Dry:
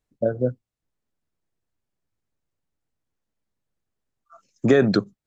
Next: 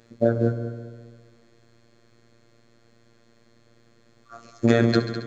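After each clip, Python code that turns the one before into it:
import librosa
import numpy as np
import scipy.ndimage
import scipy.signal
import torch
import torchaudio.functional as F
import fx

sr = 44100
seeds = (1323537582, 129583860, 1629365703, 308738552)

y = fx.bin_compress(x, sr, power=0.6)
y = fx.robotise(y, sr, hz=116.0)
y = fx.echo_heads(y, sr, ms=68, heads='all three', feedback_pct=53, wet_db=-14)
y = F.gain(torch.from_numpy(y), 1.0).numpy()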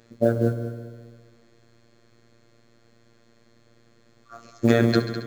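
y = fx.mod_noise(x, sr, seeds[0], snr_db=33)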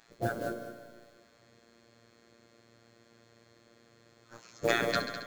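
y = fx.spec_gate(x, sr, threshold_db=-10, keep='weak')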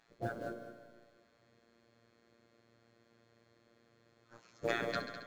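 y = fx.high_shelf(x, sr, hz=6500.0, db=-12.0)
y = F.gain(torch.from_numpy(y), -6.5).numpy()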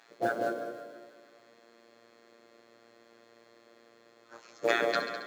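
y = scipy.signal.sosfilt(scipy.signal.butter(2, 330.0, 'highpass', fs=sr, output='sos'), x)
y = fx.rider(y, sr, range_db=10, speed_s=2.0)
y = fx.echo_alternate(y, sr, ms=163, hz=870.0, feedback_pct=52, wet_db=-9.5)
y = F.gain(torch.from_numpy(y), 7.5).numpy()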